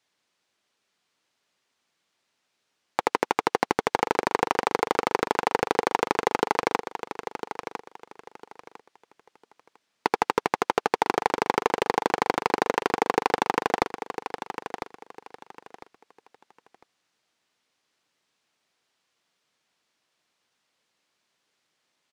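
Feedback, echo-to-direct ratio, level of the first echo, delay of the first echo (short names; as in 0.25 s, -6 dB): 25%, -9.5 dB, -10.0 dB, 1.002 s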